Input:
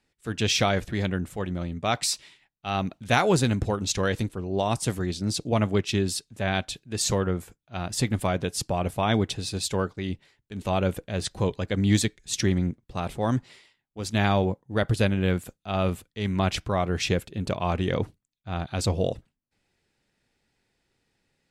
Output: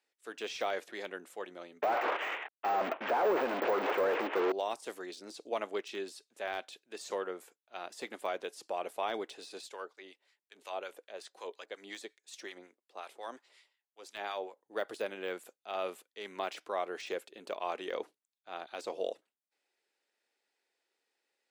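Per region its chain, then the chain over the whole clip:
1.82–4.52 s: CVSD coder 16 kbps + overdrive pedal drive 42 dB, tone 1.2 kHz, clips at -10 dBFS
9.69–14.57 s: high-pass 460 Hz 6 dB/octave + harmonic tremolo 5.5 Hz, crossover 1 kHz
whole clip: high-pass 380 Hz 24 dB/octave; de-esser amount 95%; trim -7.5 dB

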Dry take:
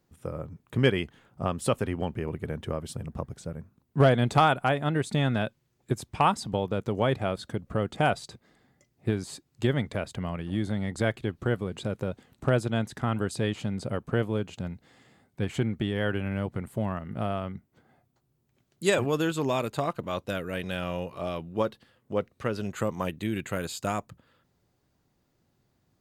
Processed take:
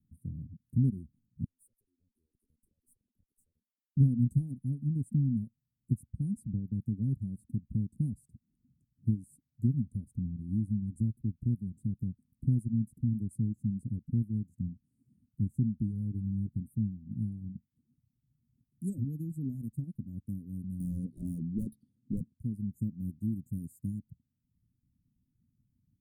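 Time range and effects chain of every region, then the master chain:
1.44–3.97 s: compression, threshold -39 dBFS + high-pass 570 Hz 24 dB/octave + valve stage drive 48 dB, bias 0.25
20.80–22.34 s: Savitzky-Golay filter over 15 samples + resonant high shelf 2.3 kHz +9.5 dB, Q 3 + overdrive pedal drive 27 dB, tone 2.1 kHz, clips at -10.5 dBFS
whole clip: Chebyshev band-stop 250–9300 Hz, order 4; reverb removal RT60 0.69 s; tone controls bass +1 dB, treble -10 dB

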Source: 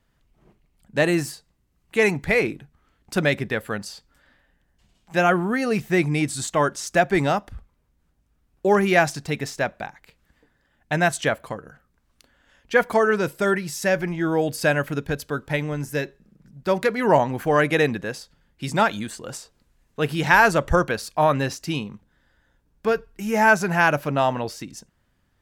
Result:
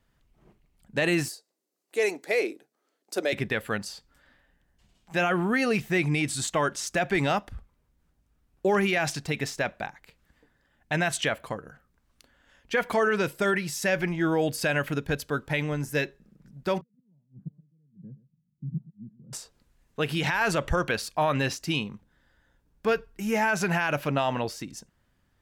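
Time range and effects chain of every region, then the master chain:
1.28–3.33 s: high-pass 340 Hz 24 dB/octave + high-order bell 1.7 kHz -9 dB 2.3 oct
16.81–19.33 s: inverted gate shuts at -15 dBFS, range -33 dB + Butterworth band-pass 160 Hz, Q 2.1 + delay 122 ms -18 dB
whole clip: dynamic bell 2.8 kHz, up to +7 dB, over -38 dBFS, Q 1.1; peak limiter -13.5 dBFS; trim -2 dB

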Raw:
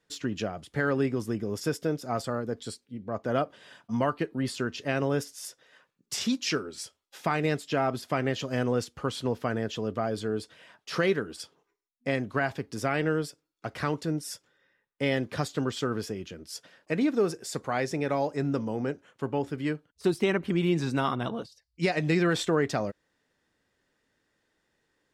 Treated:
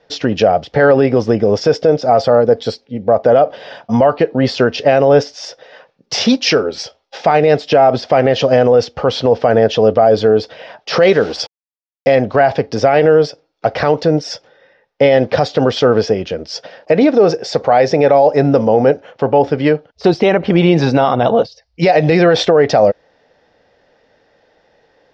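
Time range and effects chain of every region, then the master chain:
11.03–12.15 s: treble shelf 4.2 kHz +7.5 dB + word length cut 8-bit, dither none
whole clip: elliptic low-pass 5.5 kHz, stop band 70 dB; high-order bell 620 Hz +11.5 dB 1.1 oct; loudness maximiser +17.5 dB; trim -1 dB

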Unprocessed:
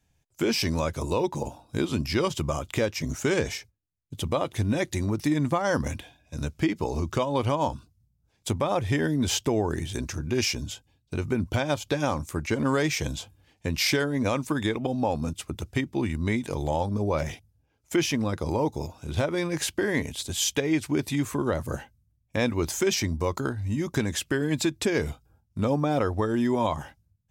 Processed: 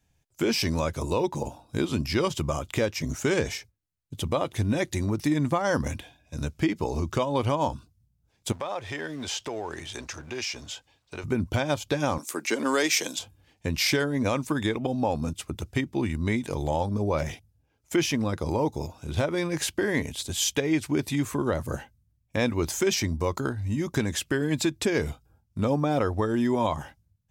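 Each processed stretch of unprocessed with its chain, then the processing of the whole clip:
8.52–11.24 s: companding laws mixed up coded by mu + three-band isolator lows -14 dB, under 440 Hz, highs -14 dB, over 7.9 kHz + compression 2:1, threshold -31 dBFS
12.18–13.19 s: high-pass 250 Hz 24 dB/octave + treble shelf 2.4 kHz +8 dB
whole clip: none

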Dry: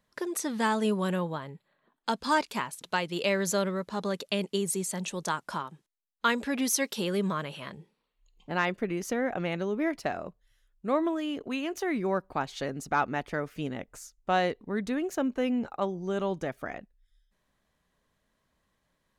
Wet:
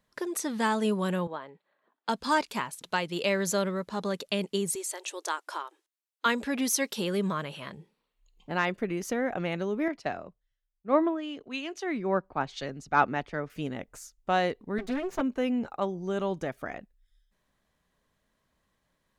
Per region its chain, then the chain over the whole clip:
1.27–2.09 s: band-pass 350–6000 Hz + treble shelf 3.1 kHz -8 dB
4.75–6.26 s: brick-wall FIR high-pass 290 Hz + peaking EQ 370 Hz -3 dB 2.7 oct
9.88–13.50 s: low-pass 5.9 kHz + three bands expanded up and down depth 100%
14.78–15.21 s: comb filter that takes the minimum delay 7.7 ms + treble shelf 6.9 kHz -8.5 dB
whole clip: none

